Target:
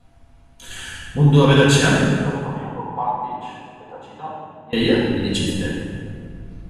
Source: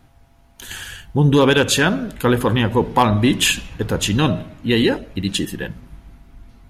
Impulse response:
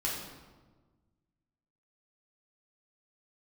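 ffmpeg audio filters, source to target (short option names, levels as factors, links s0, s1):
-filter_complex "[0:a]asettb=1/sr,asplit=3[s0][s1][s2];[s0]atrim=end=2.104[s3];[s1]atrim=start=2.1:end=4.73,asetpts=PTS-STARTPTS,afade=t=in:d=0.004:c=qsin,afade=t=out:st=2.626:d=0.004:c=qsin,bandpass=f=820:t=q:w=5.6:csg=0[s4];[s2]atrim=start=4.726[s5];[s3][s4]acrossfade=d=0.004:c1=hsin:c2=qsin[s6];[s6][s5]acrossfade=d=0.004:c1=qsin:c2=hsin[s7];[1:a]atrim=start_sample=2205,asetrate=22932,aresample=44100[s8];[s7][s8]afir=irnorm=-1:irlink=0,volume=0.316"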